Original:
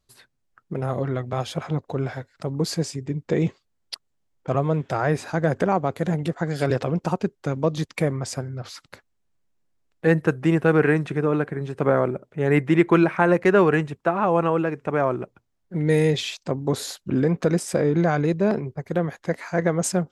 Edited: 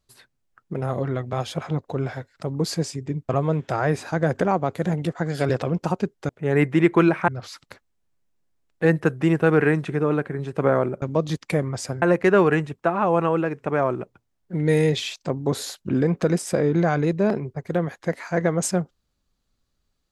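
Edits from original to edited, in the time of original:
3.29–4.5 cut
7.5–8.5 swap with 12.24–13.23

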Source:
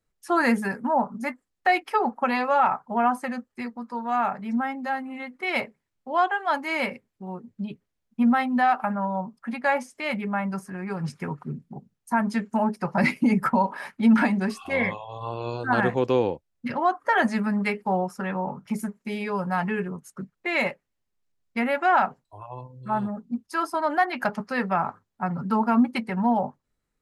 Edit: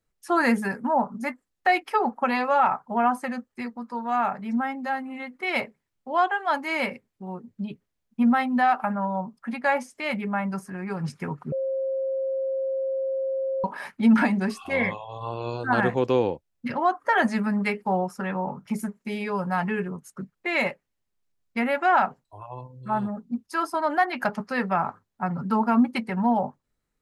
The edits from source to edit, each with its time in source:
11.52–13.64 bleep 534 Hz -24 dBFS

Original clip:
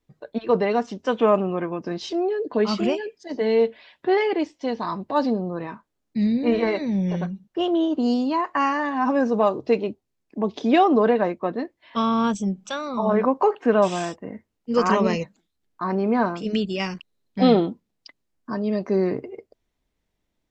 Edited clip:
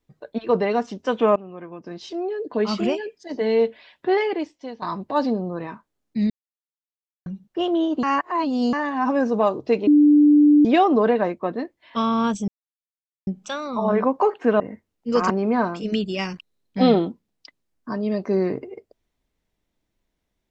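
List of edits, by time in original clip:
1.36–2.83 fade in, from -17 dB
4.17–4.82 fade out, to -13 dB
6.3–7.26 mute
8.03–8.73 reverse
9.87–10.65 bleep 295 Hz -10 dBFS
12.48 insert silence 0.79 s
13.81–14.22 cut
14.92–15.91 cut

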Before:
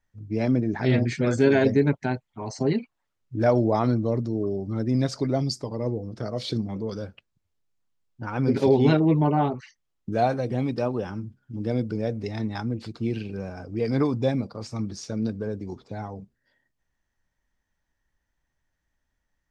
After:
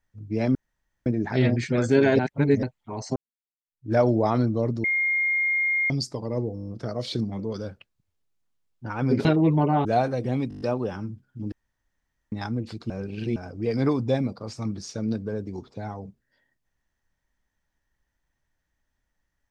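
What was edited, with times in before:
0.55 insert room tone 0.51 s
1.68–2.12 reverse
2.65–3.41 fade in exponential
4.33–5.39 bleep 2130 Hz -20.5 dBFS
6.04 stutter 0.02 s, 7 plays
8.62–8.89 cut
9.49–10.11 cut
10.75 stutter 0.02 s, 7 plays
11.66–12.46 room tone
13.04–13.5 reverse

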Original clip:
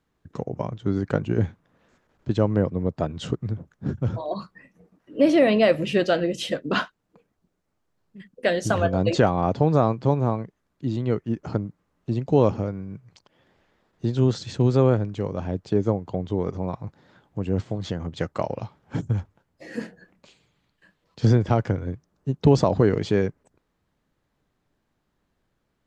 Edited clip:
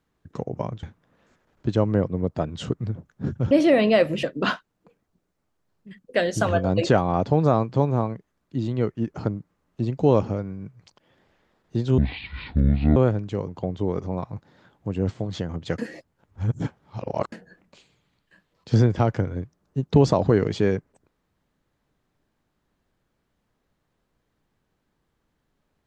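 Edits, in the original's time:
0.83–1.45 cut
4.13–5.2 cut
5.92–6.52 cut
14.27–14.82 speed 56%
15.34–15.99 cut
18.29–19.83 reverse

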